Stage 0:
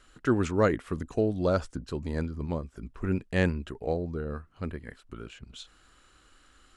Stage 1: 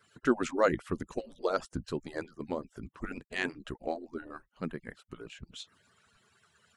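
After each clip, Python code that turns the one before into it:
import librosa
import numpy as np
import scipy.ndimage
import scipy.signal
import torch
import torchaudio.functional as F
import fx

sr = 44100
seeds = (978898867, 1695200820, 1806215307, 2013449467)

y = fx.hpss_only(x, sr, part='percussive')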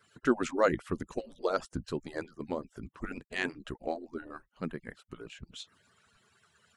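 y = x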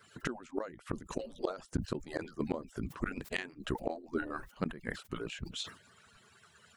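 y = fx.gate_flip(x, sr, shuts_db=-25.0, range_db=-26)
y = fx.sustainer(y, sr, db_per_s=140.0)
y = y * librosa.db_to_amplitude(5.0)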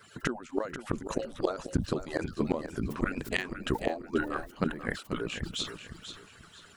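y = fx.echo_feedback(x, sr, ms=488, feedback_pct=31, wet_db=-10.0)
y = y * librosa.db_to_amplitude(5.5)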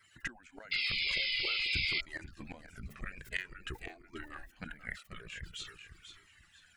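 y = fx.spec_paint(x, sr, seeds[0], shape='noise', start_s=0.71, length_s=1.3, low_hz=2000.0, high_hz=5200.0, level_db=-26.0)
y = fx.graphic_eq(y, sr, hz=(125, 250, 500, 1000, 2000, 4000), db=(-3, -8, -8, -9, 9, -3))
y = fx.comb_cascade(y, sr, direction='falling', hz=0.48)
y = y * librosa.db_to_amplitude(-4.5)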